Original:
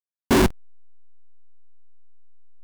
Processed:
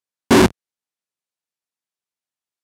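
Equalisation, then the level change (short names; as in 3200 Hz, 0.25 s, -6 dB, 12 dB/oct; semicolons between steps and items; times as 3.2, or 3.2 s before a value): HPF 97 Hz; LPF 11000 Hz 12 dB/oct; +6.0 dB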